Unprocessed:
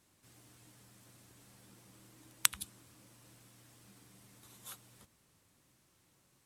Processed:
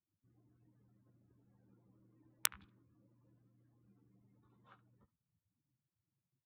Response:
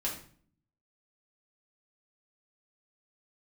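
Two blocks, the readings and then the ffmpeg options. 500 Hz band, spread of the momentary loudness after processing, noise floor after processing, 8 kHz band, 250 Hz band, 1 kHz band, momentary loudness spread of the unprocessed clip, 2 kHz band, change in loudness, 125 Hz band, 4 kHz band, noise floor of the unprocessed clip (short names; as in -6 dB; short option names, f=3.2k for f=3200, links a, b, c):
-6.0 dB, 0 LU, under -85 dBFS, -7.0 dB, -7.0 dB, -5.0 dB, 20 LU, -6.0 dB, -2.0 dB, -6.5 dB, -6.5 dB, -72 dBFS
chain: -filter_complex "[0:a]afftdn=nr=23:nf=-60,acrossover=split=750|2200[a][b][c];[b]aecho=1:1:17|70:0.562|0.178[d];[c]acrusher=bits=3:mix=0:aa=0.000001[e];[a][d][e]amix=inputs=3:normalize=0,volume=-6.5dB"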